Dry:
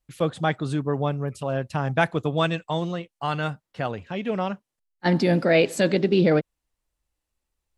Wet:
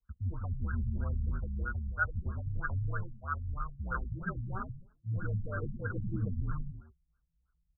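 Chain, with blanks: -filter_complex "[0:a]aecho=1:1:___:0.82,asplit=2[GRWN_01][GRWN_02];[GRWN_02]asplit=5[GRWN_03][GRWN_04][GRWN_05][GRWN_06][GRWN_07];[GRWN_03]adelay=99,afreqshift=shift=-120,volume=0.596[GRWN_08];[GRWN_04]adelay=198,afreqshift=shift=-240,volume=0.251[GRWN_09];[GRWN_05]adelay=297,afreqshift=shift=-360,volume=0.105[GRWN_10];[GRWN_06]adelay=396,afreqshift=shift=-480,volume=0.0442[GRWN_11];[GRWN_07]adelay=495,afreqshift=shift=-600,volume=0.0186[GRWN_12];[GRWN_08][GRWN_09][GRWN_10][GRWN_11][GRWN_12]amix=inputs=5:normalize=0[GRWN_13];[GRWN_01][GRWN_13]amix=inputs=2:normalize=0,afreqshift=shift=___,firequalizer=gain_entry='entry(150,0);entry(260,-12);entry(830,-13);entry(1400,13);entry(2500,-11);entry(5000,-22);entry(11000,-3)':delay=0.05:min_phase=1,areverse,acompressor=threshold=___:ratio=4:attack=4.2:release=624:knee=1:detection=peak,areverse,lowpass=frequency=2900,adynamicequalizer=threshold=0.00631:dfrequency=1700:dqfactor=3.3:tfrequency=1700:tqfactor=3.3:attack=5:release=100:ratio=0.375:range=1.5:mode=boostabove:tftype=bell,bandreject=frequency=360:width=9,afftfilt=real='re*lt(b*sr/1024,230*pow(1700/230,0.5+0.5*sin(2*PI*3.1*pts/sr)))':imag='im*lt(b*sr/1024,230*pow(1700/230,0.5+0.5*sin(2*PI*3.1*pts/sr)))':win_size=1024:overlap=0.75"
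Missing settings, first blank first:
7.3, -66, 0.0355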